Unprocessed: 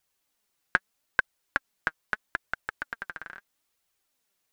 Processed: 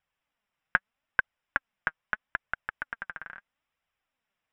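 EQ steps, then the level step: Savitzky-Golay filter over 25 samples; peaking EQ 370 Hz -9.5 dB 0.68 oct; 0.0 dB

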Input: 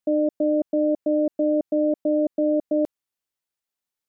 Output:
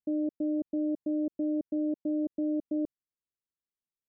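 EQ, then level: boxcar filter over 60 samples; -3.5 dB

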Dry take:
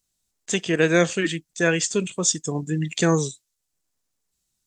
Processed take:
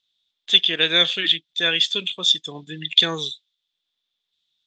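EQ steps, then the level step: resonant low-pass 3.5 kHz, resonance Q 14; distance through air 85 m; tilt EQ +3 dB/octave; -4.5 dB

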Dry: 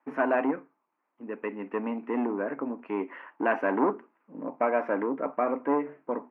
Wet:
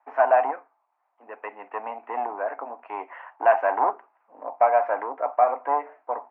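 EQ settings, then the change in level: resonant high-pass 730 Hz, resonance Q 4.9; distance through air 140 m; peaking EQ 2.3 kHz +2.5 dB 2.9 oct; -1.5 dB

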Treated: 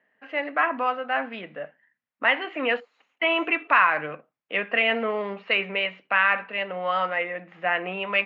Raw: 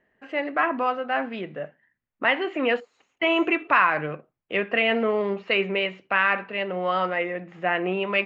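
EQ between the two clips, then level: band-pass 200–3400 Hz; tilt shelf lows -3 dB; peaking EQ 370 Hz -11.5 dB 0.2 oct; 0.0 dB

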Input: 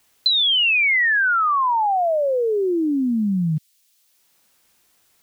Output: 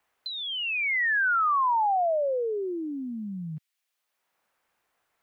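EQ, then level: three-band isolator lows -15 dB, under 500 Hz, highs -16 dB, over 2.2 kHz; bass shelf 350 Hz +5.5 dB; -4.5 dB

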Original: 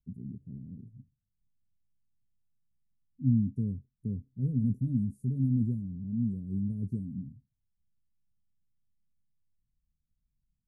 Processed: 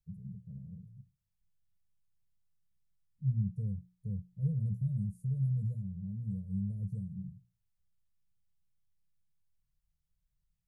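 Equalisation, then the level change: elliptic band-stop 190–470 Hz; hum notches 60/120/180 Hz; 0.0 dB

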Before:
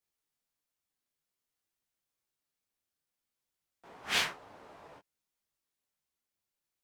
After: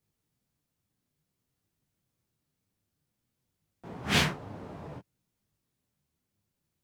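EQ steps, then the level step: peaking EQ 130 Hz +13.5 dB 2.4 oct; bass shelf 410 Hz +8 dB; +2.5 dB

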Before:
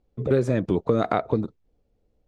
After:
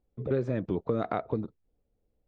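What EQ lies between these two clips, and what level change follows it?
distance through air 160 m; -7.0 dB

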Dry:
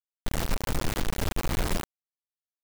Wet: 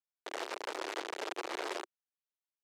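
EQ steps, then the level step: elliptic high-pass 360 Hz, stop band 80 dB; Bessel low-pass 4.7 kHz, order 2; -3.5 dB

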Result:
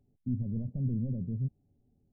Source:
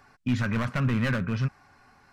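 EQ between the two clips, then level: Gaussian low-pass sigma 22 samples; -4.5 dB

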